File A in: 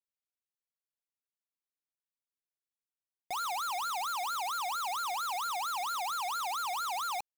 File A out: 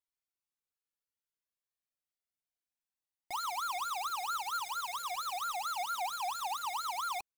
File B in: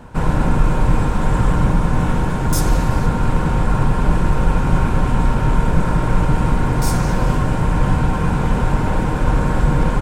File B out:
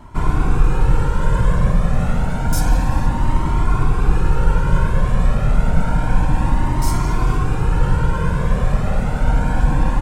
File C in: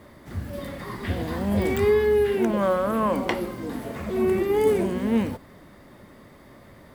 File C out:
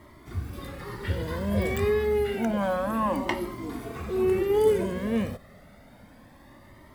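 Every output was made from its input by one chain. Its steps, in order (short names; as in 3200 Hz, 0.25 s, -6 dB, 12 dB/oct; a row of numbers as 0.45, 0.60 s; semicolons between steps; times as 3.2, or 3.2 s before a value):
cascading flanger rising 0.29 Hz; gain +2 dB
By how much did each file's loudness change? -2.5, -1.0, -3.0 LU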